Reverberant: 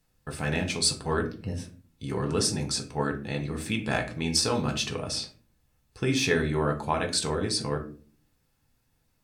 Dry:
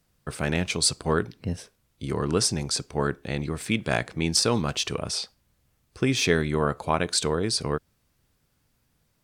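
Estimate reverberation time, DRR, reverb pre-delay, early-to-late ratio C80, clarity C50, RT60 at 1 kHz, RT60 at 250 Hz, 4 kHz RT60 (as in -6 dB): 0.40 s, 2.5 dB, 4 ms, 17.0 dB, 12.0 dB, 0.35 s, 0.65 s, 0.25 s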